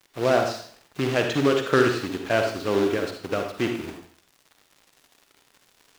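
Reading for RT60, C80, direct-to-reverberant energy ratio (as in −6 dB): 0.55 s, 8.5 dB, 3.5 dB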